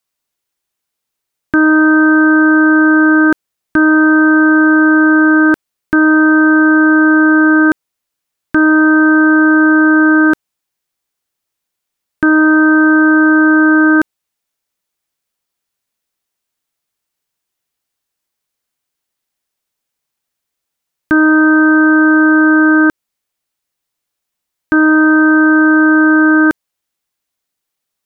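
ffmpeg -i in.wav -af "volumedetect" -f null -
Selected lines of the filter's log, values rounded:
mean_volume: -11.7 dB
max_volume: -3.5 dB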